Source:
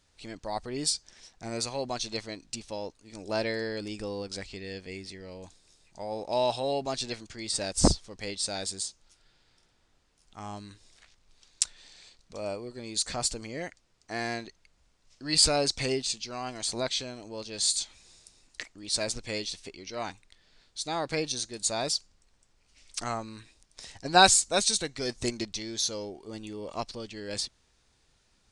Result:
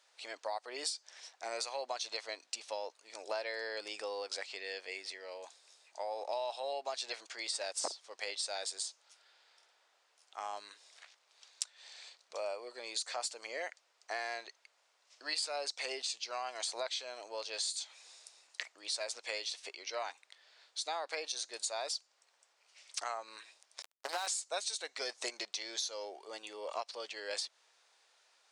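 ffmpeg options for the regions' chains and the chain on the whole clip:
-filter_complex "[0:a]asettb=1/sr,asplit=3[s0][s1][s2];[s0]atrim=end=23.824[s3];[s1]atrim=start=23.82:end=24.27,asetpts=PTS-STARTPTS,afade=t=in:d=0.004:c=qsin,afade=t=out:st=0.446:d=0.004:c=qsin,acompressor=threshold=0.0316:ratio=4:attack=3.2:release=140:knee=1:detection=peak,acrusher=bits=4:mix=0:aa=0.5[s4];[s2]atrim=start=24.266[s5];[s3][s4]acrossfade=d=0.004:c1=hsin:c2=qsin[s6];[s6][s5]acrossfade=d=0.004:c1=qsin:c2=hsin,highpass=f=550:w=0.5412,highpass=f=550:w=1.3066,highshelf=f=5700:g=-6,acompressor=threshold=0.0126:ratio=6,volume=1.41"

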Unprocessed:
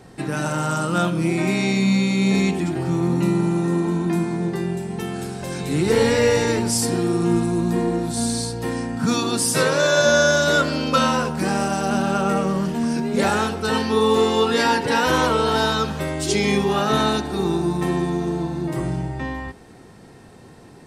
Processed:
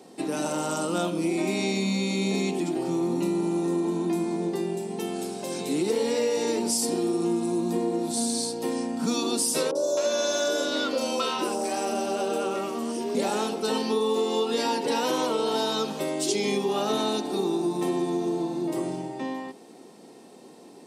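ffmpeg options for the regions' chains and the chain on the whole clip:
-filter_complex "[0:a]asettb=1/sr,asplit=3[s0][s1][s2];[s0]atrim=end=9.714[s3];[s1]atrim=start=9.71:end=13.15,asetpts=PTS-STARTPTS,afade=t=in:d=0.004:c=qsin,afade=t=out:st=3.436:d=0.004:c=qsin,highpass=f=280:w=0.5412,highpass=f=280:w=1.3066,aeval=exprs='val(0)+0.0224*(sin(2*PI*50*n/s)+sin(2*PI*2*50*n/s)/2+sin(2*PI*3*50*n/s)/3+sin(2*PI*4*50*n/s)/4+sin(2*PI*5*50*n/s)/5)':c=same,acrossover=split=840|5300[s4][s5][s6];[s6]adelay=40[s7];[s5]adelay=260[s8];[s4][s8][s7]amix=inputs=3:normalize=0,atrim=end_sample=151704[s9];[s2]atrim=start=13.146[s10];[s3][s9]acrossfade=d=0.004:c1=hsin:c2=qsin[s11];[s11][s10]acrossfade=d=0.004:c1=qsin:c2=hsin,highpass=f=230:w=0.5412,highpass=f=230:w=1.3066,equalizer=f=1600:w=1.5:g=-12,acompressor=threshold=0.0794:ratio=6"

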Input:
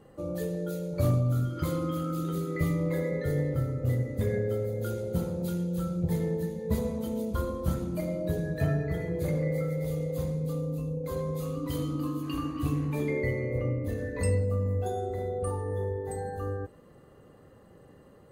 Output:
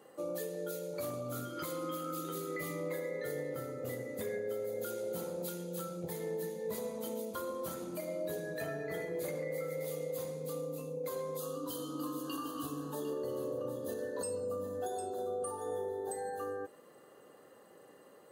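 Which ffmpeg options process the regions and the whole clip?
-filter_complex "[0:a]asettb=1/sr,asplit=3[s0][s1][s2];[s0]atrim=end=11.374[s3];[s1]atrim=start=11.37:end=16.13,asetpts=PTS-STARTPTS,afade=t=in:d=0.004:c=qsin,afade=t=out:st=4.756:d=0.004:c=qsin,asuperstop=centerf=2200:order=8:qfactor=2,aecho=1:1:752:0.282,atrim=end_sample=209916[s4];[s2]atrim=start=16.126[s5];[s3][s4]acrossfade=d=0.004:c1=hsin:c2=qsin[s6];[s6][s5]acrossfade=d=0.004:c1=qsin:c2=hsin,highpass=370,highshelf=f=5700:g=7,alimiter=level_in=1.78:limit=0.0631:level=0:latency=1:release=311,volume=0.562"

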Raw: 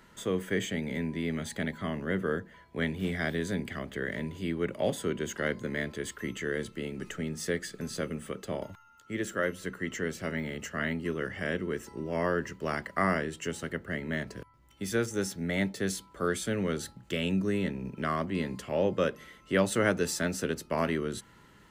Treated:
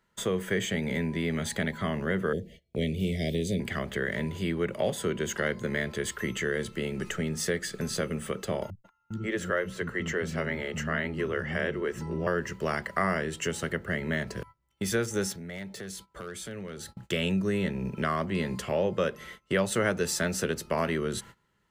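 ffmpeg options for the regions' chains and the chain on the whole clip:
-filter_complex "[0:a]asettb=1/sr,asplit=3[s0][s1][s2];[s0]atrim=end=2.334[s3];[s1]atrim=start=2.33:end=3.6,asetpts=PTS-STARTPTS,afade=t=in:d=0.004:c=qsin,afade=t=out:st=1.266:d=0.004:c=qsin,asuperstop=centerf=1200:order=8:qfactor=0.72,lowshelf=f=68:g=7[s4];[s2]atrim=start=3.596[s5];[s3][s4]acrossfade=d=0.004:c1=hsin:c2=qsin[s6];[s6][s5]acrossfade=d=0.004:c1=qsin:c2=hsin,asettb=1/sr,asplit=3[s7][s8][s9];[s7]atrim=end=8.704[s10];[s8]atrim=start=8.7:end=12.27,asetpts=PTS-STARTPTS,afade=t=in:d=0.004:c=qsin,afade=t=out:st=3.566:d=0.004:c=qsin,aemphasis=mode=reproduction:type=cd,acrossover=split=230[s11][s12];[s12]adelay=140[s13];[s11][s13]amix=inputs=2:normalize=0,atrim=end_sample=157437[s14];[s9]atrim=start=12.266[s15];[s10][s14]acrossfade=d=0.004:c1=hsin:c2=qsin[s16];[s16][s15]acrossfade=d=0.004:c1=qsin:c2=hsin,asettb=1/sr,asplit=3[s17][s18][s19];[s17]atrim=end=15.324[s20];[s18]atrim=start=15.32:end=16.97,asetpts=PTS-STARTPTS,afade=t=in:d=0.004:c=qsin,afade=t=out:st=1.646:d=0.004:c=qsin,acompressor=threshold=0.00562:ratio=4:attack=3.2:release=140:knee=1:detection=peak,aeval=exprs='0.0133*(abs(mod(val(0)/0.0133+3,4)-2)-1)':c=same[s21];[s19]atrim=start=16.966[s22];[s20][s21]acrossfade=d=0.004:c1=hsin:c2=qsin[s23];[s23][s22]acrossfade=d=0.004:c1=qsin:c2=hsin,agate=range=0.0794:threshold=0.00282:ratio=16:detection=peak,equalizer=f=280:w=7.1:g=-12.5,acompressor=threshold=0.0178:ratio=2,volume=2.24"

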